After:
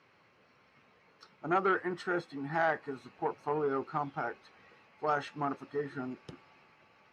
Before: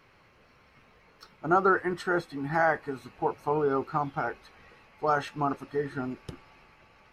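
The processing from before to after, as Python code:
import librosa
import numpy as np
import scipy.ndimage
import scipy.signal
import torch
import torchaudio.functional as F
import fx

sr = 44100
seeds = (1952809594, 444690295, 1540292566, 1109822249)

y = fx.bandpass_edges(x, sr, low_hz=130.0, high_hz=6900.0)
y = fx.transformer_sat(y, sr, knee_hz=700.0)
y = y * 10.0 ** (-4.5 / 20.0)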